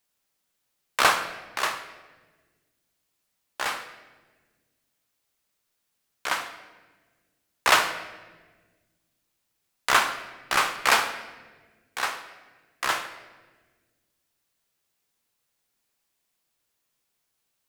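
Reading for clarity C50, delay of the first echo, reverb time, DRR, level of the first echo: 10.0 dB, no echo, 1.4 s, 7.0 dB, no echo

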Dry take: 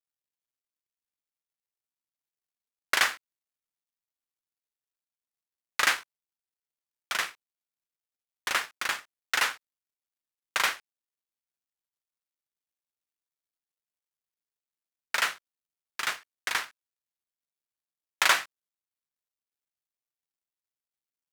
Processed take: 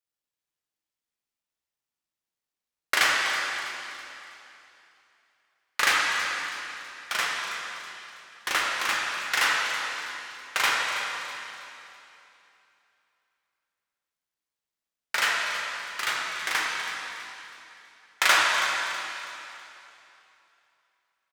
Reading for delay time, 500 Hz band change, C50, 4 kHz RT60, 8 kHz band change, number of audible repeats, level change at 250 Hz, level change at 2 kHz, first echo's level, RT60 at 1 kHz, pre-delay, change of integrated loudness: 325 ms, +5.0 dB, -1.5 dB, 2.8 s, +3.5 dB, 1, +5.5 dB, +5.0 dB, -12.5 dB, 2.9 s, 5 ms, +2.0 dB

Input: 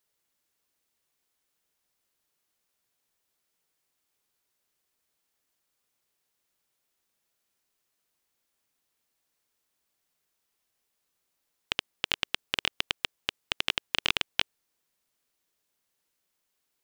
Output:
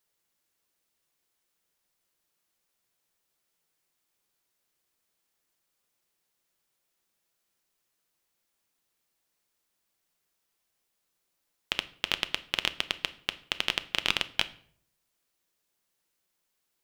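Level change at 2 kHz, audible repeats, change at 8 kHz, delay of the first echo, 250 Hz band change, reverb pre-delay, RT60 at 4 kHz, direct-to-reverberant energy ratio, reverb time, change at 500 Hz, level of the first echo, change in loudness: +0.5 dB, no echo, 0.0 dB, no echo, +0.5 dB, 5 ms, 0.40 s, 11.5 dB, 0.60 s, +0.5 dB, no echo, 0.0 dB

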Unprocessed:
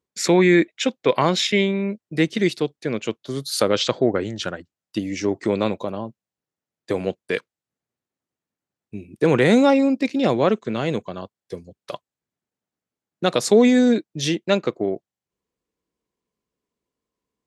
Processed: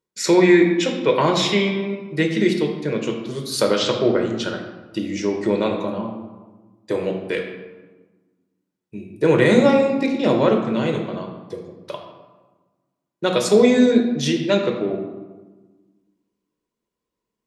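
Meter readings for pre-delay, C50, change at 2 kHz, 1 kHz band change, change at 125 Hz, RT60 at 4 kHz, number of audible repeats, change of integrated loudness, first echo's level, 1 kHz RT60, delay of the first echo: 3 ms, 5.5 dB, +1.0 dB, +0.5 dB, +1.0 dB, 0.75 s, no echo, +1.5 dB, no echo, 1.3 s, no echo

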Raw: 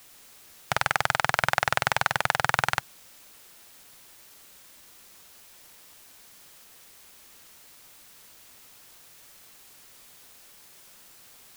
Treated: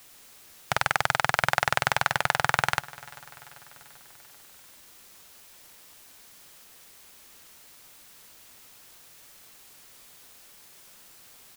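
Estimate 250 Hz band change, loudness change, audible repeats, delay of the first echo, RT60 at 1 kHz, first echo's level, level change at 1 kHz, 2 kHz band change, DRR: 0.0 dB, 0.0 dB, 3, 391 ms, no reverb, -21.5 dB, 0.0 dB, 0.0 dB, no reverb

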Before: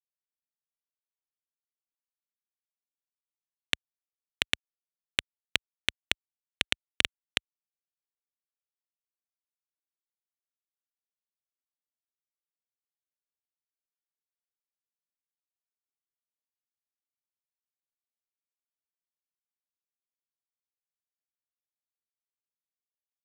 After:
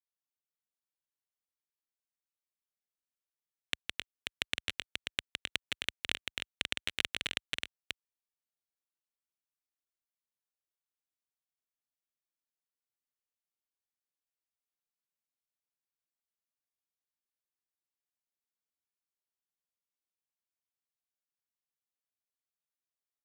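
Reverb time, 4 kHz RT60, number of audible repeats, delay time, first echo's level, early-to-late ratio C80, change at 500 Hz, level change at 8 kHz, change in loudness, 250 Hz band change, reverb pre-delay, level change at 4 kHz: no reverb, no reverb, 3, 162 ms, -5.0 dB, no reverb, -4.0 dB, -4.0 dB, -5.5 dB, -4.0 dB, no reverb, -4.0 dB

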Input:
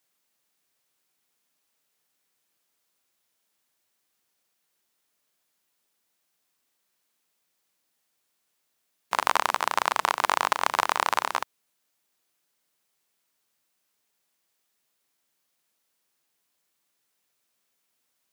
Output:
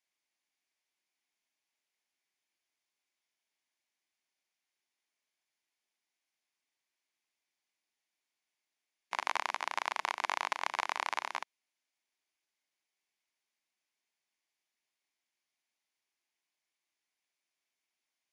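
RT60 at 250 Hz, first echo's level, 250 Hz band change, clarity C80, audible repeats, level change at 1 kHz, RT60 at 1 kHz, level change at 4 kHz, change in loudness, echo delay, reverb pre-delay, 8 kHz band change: no reverb, no echo, -12.5 dB, no reverb, no echo, -11.0 dB, no reverb, -9.0 dB, -10.0 dB, no echo, no reverb, -12.0 dB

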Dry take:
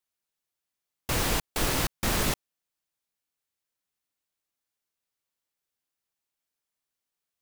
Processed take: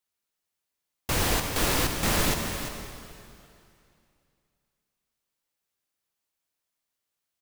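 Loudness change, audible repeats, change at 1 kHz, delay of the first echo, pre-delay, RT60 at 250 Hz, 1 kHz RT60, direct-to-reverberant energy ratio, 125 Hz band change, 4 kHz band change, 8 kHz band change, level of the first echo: +2.0 dB, 1, +2.5 dB, 344 ms, 5 ms, 2.6 s, 2.6 s, 3.5 dB, +2.5 dB, +2.5 dB, +2.5 dB, -10.5 dB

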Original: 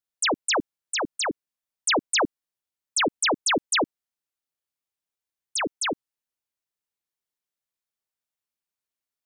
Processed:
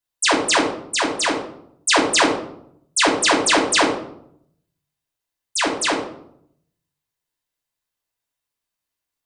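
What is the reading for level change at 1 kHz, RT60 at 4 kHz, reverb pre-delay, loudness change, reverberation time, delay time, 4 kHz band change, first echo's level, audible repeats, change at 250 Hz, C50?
+8.0 dB, 0.45 s, 3 ms, +6.5 dB, 0.70 s, no echo, +6.5 dB, no echo, no echo, +8.5 dB, 5.5 dB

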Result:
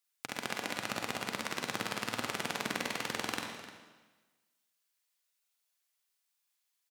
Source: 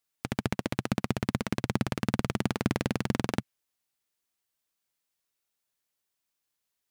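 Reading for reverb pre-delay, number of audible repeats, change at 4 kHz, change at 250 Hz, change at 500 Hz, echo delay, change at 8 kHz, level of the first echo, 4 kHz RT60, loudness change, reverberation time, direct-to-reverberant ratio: 37 ms, 2, +2.0 dB, -12.5 dB, -6.0 dB, 46 ms, +2.5 dB, -5.5 dB, 1.2 s, -5.0 dB, 1.3 s, 0.0 dB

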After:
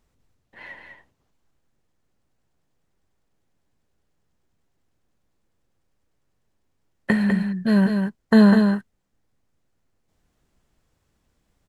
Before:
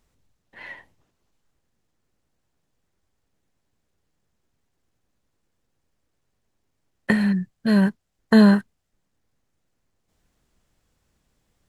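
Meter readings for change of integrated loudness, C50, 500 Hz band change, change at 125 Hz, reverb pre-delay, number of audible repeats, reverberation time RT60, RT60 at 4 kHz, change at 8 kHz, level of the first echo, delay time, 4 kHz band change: 0.0 dB, no reverb, +1.0 dB, +1.0 dB, no reverb, 1, no reverb, no reverb, no reading, -5.5 dB, 200 ms, -1.5 dB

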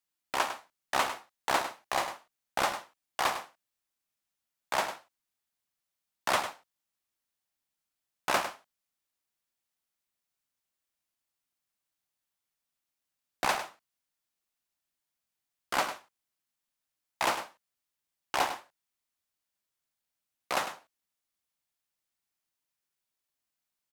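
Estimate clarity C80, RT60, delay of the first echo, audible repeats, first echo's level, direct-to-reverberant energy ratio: no reverb, no reverb, 102 ms, 1, -10.5 dB, no reverb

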